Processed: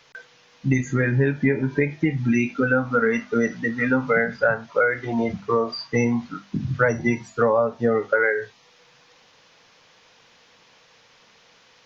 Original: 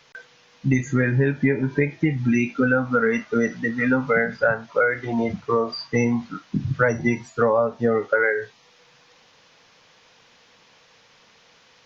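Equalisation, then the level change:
mains-hum notches 50/100/150/200/250 Hz
0.0 dB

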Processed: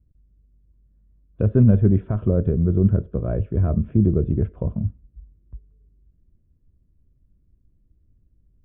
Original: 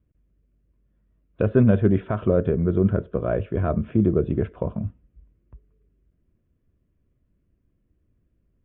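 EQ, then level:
spectral tilt −2.5 dB per octave
low-shelf EQ 290 Hz +6.5 dB
−8.5 dB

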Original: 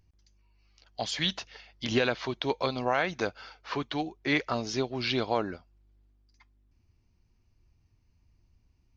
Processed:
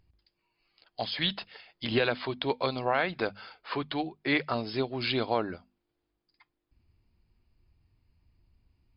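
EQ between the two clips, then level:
linear-phase brick-wall low-pass 5,200 Hz
mains-hum notches 50/100/150/200/250 Hz
0.0 dB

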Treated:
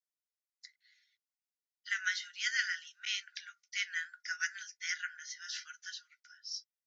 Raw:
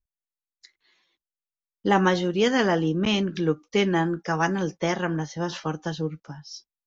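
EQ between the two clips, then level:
Chebyshev high-pass with heavy ripple 1,400 Hz, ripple 9 dB
0.0 dB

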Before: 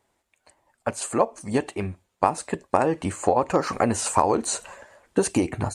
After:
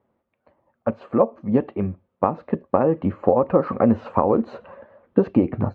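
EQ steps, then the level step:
high-frequency loss of the air 74 metres
loudspeaker in its box 130–3,600 Hz, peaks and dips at 220 Hz +6 dB, 530 Hz +8 dB, 1,200 Hz +7 dB
spectral tilt −4 dB per octave
−4.5 dB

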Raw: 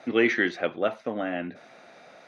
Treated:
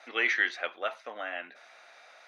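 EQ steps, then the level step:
high-pass filter 970 Hz 12 dB per octave
0.0 dB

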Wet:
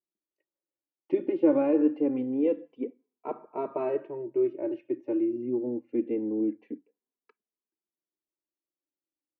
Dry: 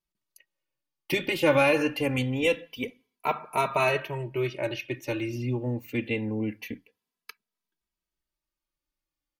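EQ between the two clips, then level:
dynamic equaliser 310 Hz, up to +6 dB, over −39 dBFS, Q 1.5
four-pole ladder band-pass 390 Hz, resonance 40%
+7.0 dB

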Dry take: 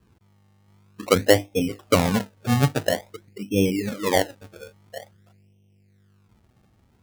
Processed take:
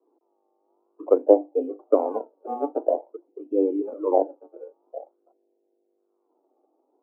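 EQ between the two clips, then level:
Butterworth high-pass 290 Hz 72 dB per octave
inverse Chebyshev low-pass filter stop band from 1,700 Hz, stop band 40 dB
+2.0 dB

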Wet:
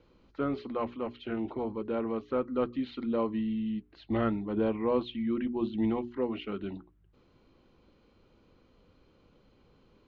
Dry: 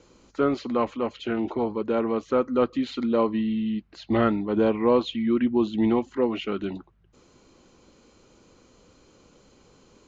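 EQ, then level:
low-pass filter 4,100 Hz 24 dB per octave
low-shelf EQ 170 Hz +7.5 dB
mains-hum notches 60/120/180/240/300/360/420 Hz
−8.5 dB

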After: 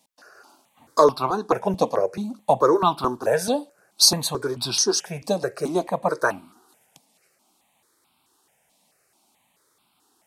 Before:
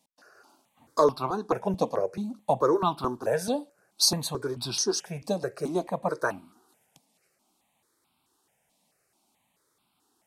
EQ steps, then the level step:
low-shelf EQ 340 Hz −5 dB
+7.0 dB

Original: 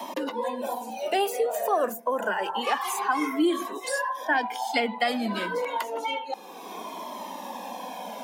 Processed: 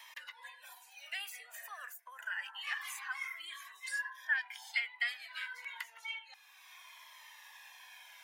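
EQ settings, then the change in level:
four-pole ladder high-pass 1,600 Hz, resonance 55%
−2.0 dB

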